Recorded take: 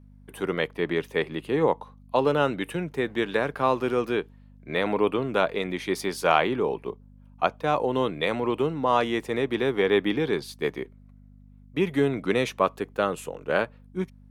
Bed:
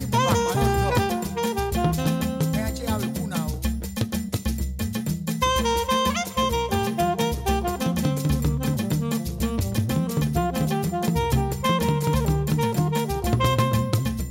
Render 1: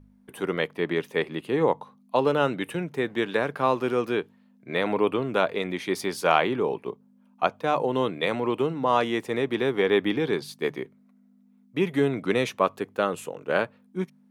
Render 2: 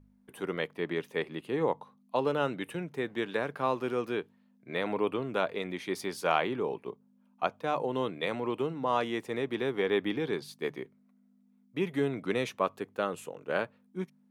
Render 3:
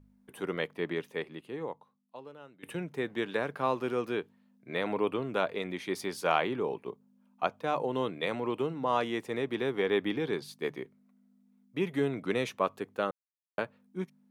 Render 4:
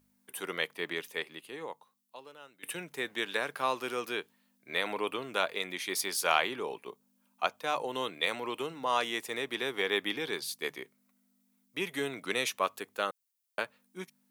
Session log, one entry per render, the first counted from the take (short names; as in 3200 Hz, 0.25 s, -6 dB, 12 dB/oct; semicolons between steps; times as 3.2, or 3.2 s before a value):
de-hum 50 Hz, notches 3
gain -6.5 dB
0.85–2.63 fade out quadratic, to -22.5 dB; 13.11–13.58 mute
tilt +4 dB/oct